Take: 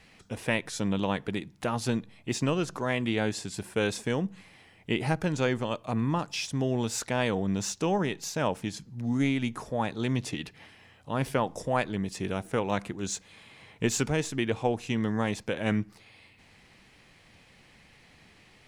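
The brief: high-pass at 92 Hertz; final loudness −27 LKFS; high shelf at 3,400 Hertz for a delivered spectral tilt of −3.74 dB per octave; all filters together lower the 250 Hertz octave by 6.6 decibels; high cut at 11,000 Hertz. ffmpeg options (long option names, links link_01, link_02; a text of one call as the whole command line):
ffmpeg -i in.wav -af "highpass=92,lowpass=11000,equalizer=frequency=250:width_type=o:gain=-8.5,highshelf=frequency=3400:gain=3.5,volume=5dB" out.wav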